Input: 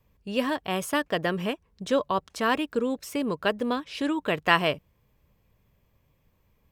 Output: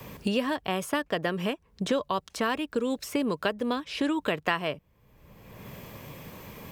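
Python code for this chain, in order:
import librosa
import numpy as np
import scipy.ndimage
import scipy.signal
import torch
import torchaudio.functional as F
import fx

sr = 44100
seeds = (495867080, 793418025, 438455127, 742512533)

y = fx.band_squash(x, sr, depth_pct=100)
y = F.gain(torch.from_numpy(y), -2.5).numpy()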